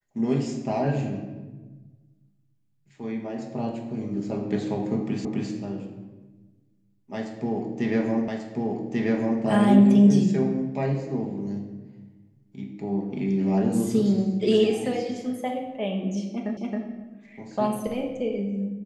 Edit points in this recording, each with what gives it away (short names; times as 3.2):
5.25 repeat of the last 0.26 s
8.28 repeat of the last 1.14 s
16.57 repeat of the last 0.27 s